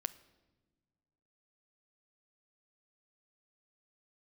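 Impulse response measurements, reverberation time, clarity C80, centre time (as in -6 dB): no single decay rate, 19.5 dB, 3 ms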